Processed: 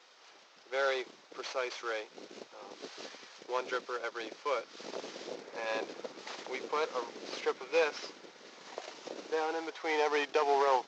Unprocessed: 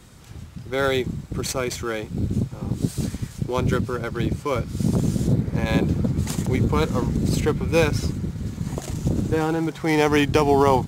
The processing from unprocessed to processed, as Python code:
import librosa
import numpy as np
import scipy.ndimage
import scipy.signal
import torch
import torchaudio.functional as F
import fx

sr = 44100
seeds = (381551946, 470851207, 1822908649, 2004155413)

y = fx.cvsd(x, sr, bps=32000)
y = scipy.signal.sosfilt(scipy.signal.butter(4, 470.0, 'highpass', fs=sr, output='sos'), y)
y = y * 10.0 ** (-6.0 / 20.0)